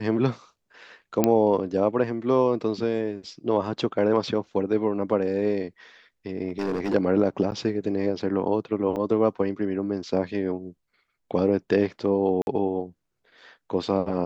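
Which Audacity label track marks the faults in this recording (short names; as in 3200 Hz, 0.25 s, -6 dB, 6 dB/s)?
1.240000	1.240000	pop -6 dBFS
6.480000	6.950000	clipped -22.5 dBFS
7.510000	7.520000	gap 9.3 ms
8.960000	8.970000	gap 5.3 ms
12.420000	12.470000	gap 51 ms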